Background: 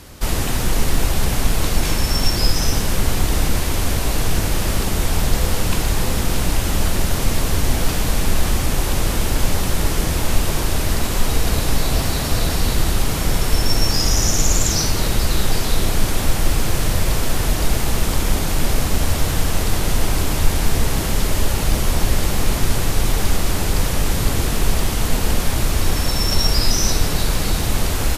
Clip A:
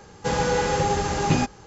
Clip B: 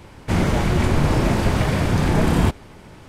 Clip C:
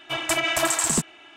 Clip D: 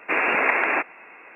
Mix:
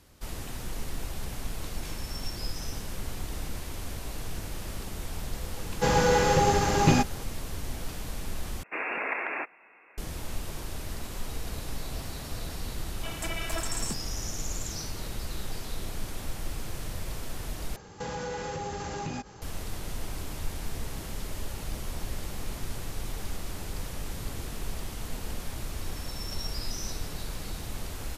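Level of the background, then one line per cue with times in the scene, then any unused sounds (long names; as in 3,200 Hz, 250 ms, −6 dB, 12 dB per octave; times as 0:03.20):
background −17.5 dB
0:05.57: mix in A
0:08.63: overwrite with D −11 dB
0:12.93: mix in C −13 dB
0:17.76: overwrite with A −1.5 dB + downward compressor 5 to 1, threshold −31 dBFS
not used: B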